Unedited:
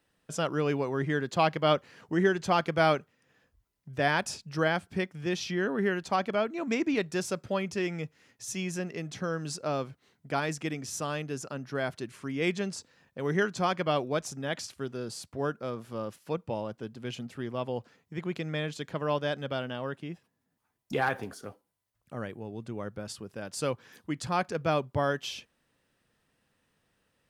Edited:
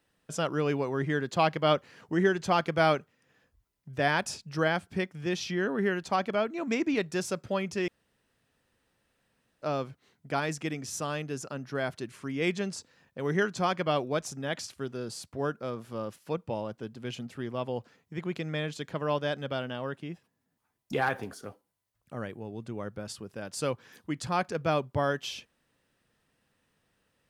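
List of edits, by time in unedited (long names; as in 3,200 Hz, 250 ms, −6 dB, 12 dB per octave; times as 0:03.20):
0:07.88–0:09.62: fill with room tone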